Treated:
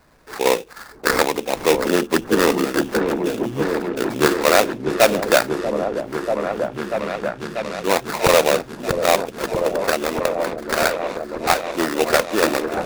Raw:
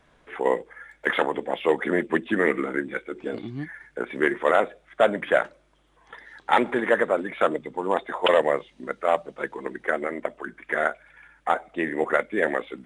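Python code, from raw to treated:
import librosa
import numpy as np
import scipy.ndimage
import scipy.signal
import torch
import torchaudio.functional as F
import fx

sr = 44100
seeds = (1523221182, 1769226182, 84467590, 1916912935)

y = fx.high_shelf(x, sr, hz=3900.0, db=-11.0, at=(1.73, 2.55))
y = fx.spec_erase(y, sr, start_s=6.2, length_s=1.64, low_hz=220.0, high_hz=7200.0)
y = fx.sample_hold(y, sr, seeds[0], rate_hz=3100.0, jitter_pct=20)
y = fx.echo_opening(y, sr, ms=639, hz=400, octaves=1, feedback_pct=70, wet_db=-3)
y = F.gain(torch.from_numpy(y), 5.0).numpy()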